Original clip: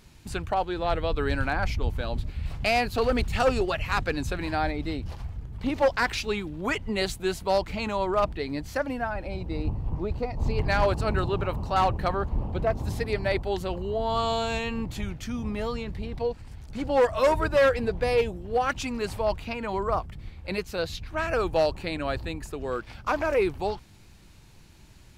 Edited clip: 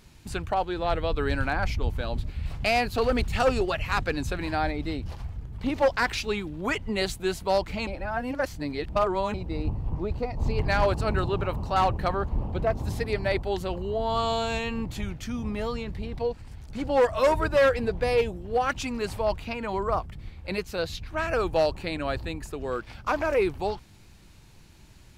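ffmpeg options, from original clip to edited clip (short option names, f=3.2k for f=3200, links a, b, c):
-filter_complex "[0:a]asplit=3[a][b][c];[a]atrim=end=7.872[d];[b]atrim=start=7.868:end=9.342,asetpts=PTS-STARTPTS,areverse[e];[c]atrim=start=9.338[f];[d][e]acrossfade=d=0.004:c1=hsin:c2=hsin[g];[g][f]acrossfade=d=0.004:c1=hsin:c2=hsin"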